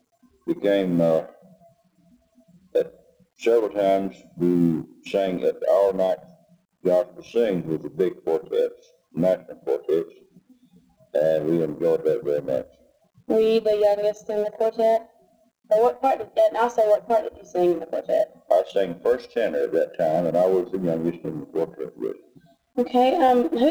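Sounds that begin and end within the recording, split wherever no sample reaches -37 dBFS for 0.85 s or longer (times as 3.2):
2.75–10.08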